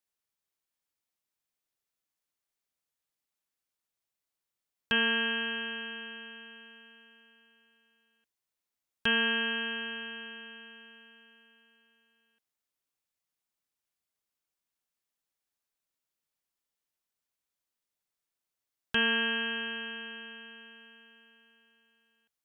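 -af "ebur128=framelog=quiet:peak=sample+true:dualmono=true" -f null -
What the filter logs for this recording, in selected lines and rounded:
Integrated loudness:
  I:         -27.4 LUFS
  Threshold: -40.6 LUFS
Loudness range:
  LRA:        10.6 LU
  Threshold: -51.8 LUFS
  LRA low:   -40.8 LUFS
  LRA high:  -30.2 LUFS
Sample peak:
  Peak:      -15.2 dBFS
True peak:
  Peak:      -15.2 dBFS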